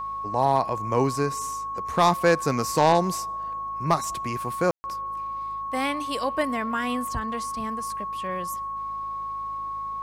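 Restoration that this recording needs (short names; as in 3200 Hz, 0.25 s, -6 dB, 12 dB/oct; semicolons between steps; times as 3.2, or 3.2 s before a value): clip repair -10.5 dBFS; de-hum 52.9 Hz, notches 4; notch 1100 Hz, Q 30; room tone fill 4.71–4.84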